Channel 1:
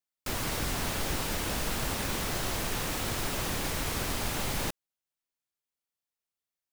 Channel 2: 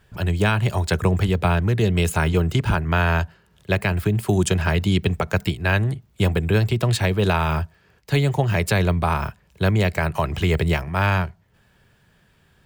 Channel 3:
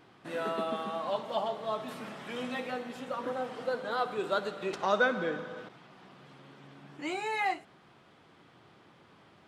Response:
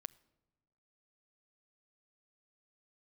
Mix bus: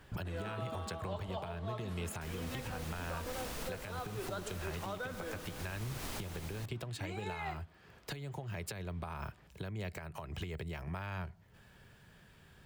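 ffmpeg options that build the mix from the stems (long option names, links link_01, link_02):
-filter_complex "[0:a]adelay=1950,volume=-1.5dB[link_01];[1:a]acompressor=threshold=-21dB:ratio=6,volume=-1.5dB[link_02];[2:a]volume=-5.5dB[link_03];[link_01][link_02]amix=inputs=2:normalize=0,acompressor=threshold=-35dB:ratio=6,volume=0dB[link_04];[link_03][link_04]amix=inputs=2:normalize=0,alimiter=level_in=6dB:limit=-24dB:level=0:latency=1:release=473,volume=-6dB"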